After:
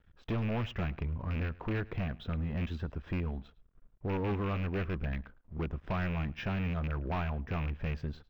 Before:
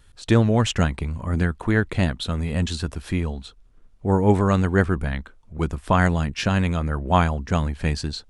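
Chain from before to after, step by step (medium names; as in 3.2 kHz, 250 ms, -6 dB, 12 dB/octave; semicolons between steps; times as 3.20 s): rattle on loud lows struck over -22 dBFS, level -15 dBFS; treble shelf 3.5 kHz -10.5 dB; band-stop 4.3 kHz, Q 5.9; in parallel at +2.5 dB: compression, threshold -26 dBFS, peak gain reduction 14 dB; on the sum: crossover distortion -48 dBFS; flange 0.34 Hz, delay 0.4 ms, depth 2.4 ms, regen -80%; hard clipper -21 dBFS, distortion -8 dB; distance through air 200 m; on a send: delay 107 ms -22 dB; on the sum: decimation joined by straight lines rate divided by 2×; trim -8 dB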